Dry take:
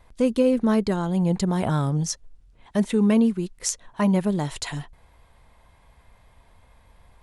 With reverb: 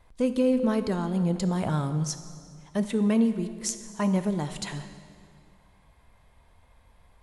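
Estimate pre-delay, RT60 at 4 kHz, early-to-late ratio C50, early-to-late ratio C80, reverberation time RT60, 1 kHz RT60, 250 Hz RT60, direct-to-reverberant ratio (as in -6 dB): 10 ms, 1.8 s, 11.0 dB, 11.5 dB, 2.1 s, 2.1 s, 2.4 s, 9.5 dB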